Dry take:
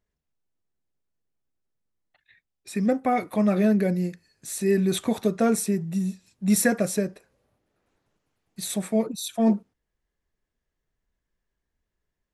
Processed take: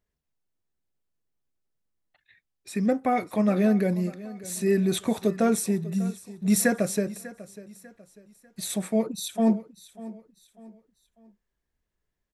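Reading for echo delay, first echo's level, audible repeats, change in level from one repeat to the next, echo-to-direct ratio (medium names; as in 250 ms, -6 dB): 595 ms, -17.5 dB, 2, -9.0 dB, -17.0 dB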